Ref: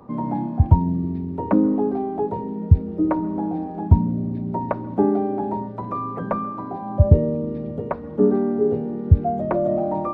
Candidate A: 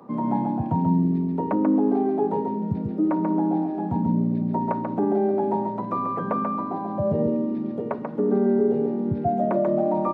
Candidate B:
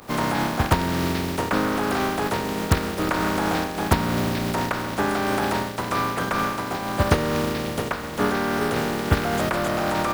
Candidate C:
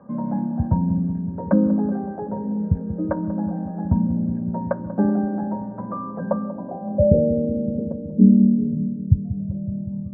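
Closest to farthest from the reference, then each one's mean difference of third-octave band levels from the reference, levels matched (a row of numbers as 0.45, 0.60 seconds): A, C, B; 3.0, 5.0, 19.0 decibels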